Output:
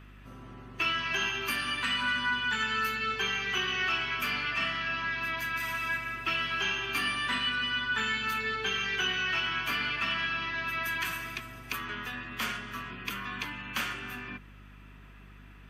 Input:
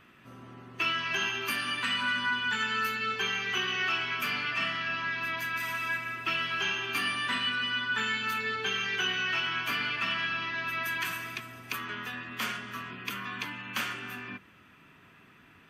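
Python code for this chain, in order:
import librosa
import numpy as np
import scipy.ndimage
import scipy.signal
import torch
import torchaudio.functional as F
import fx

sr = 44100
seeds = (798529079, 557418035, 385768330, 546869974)

y = fx.add_hum(x, sr, base_hz=50, snr_db=19)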